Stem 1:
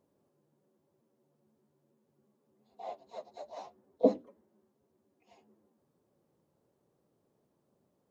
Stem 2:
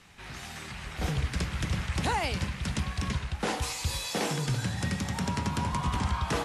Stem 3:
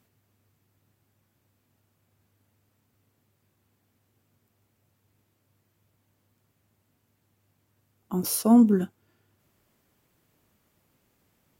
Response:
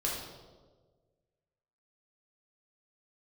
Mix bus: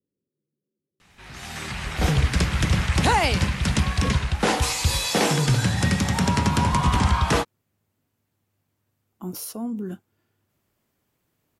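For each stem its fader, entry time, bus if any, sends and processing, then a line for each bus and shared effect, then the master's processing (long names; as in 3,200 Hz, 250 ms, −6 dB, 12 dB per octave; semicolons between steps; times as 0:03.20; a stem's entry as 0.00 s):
−8.5 dB, 0.00 s, no send, low-pass that shuts in the quiet parts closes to 400 Hz; Butterworth low-pass 550 Hz 72 dB per octave
−1.5 dB, 1.00 s, no send, automatic gain control gain up to 11 dB
−4.0 dB, 1.10 s, no send, brickwall limiter −20 dBFS, peak gain reduction 11 dB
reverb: not used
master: no processing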